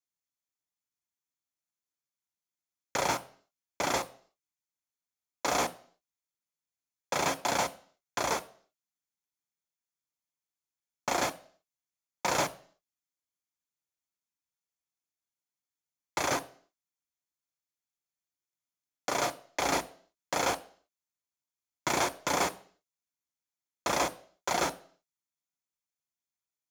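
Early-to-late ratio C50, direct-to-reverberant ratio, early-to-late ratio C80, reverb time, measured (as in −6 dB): 20.0 dB, 11.5 dB, 23.0 dB, 0.50 s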